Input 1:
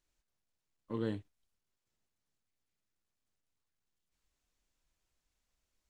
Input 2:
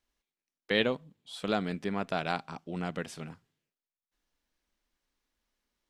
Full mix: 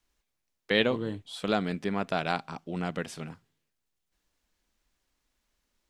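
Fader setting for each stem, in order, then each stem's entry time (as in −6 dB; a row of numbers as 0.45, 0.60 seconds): +2.0, +2.5 decibels; 0.00, 0.00 seconds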